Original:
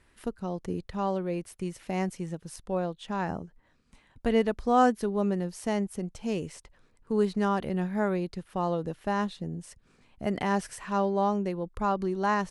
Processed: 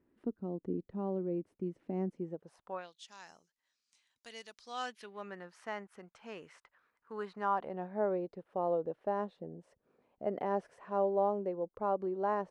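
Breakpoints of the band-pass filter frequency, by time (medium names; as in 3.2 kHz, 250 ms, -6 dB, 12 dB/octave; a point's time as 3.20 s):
band-pass filter, Q 1.8
2.16 s 290 Hz
2.74 s 1.2 kHz
2.94 s 5.8 kHz
4.52 s 5.8 kHz
5.41 s 1.4 kHz
7.18 s 1.4 kHz
8.01 s 540 Hz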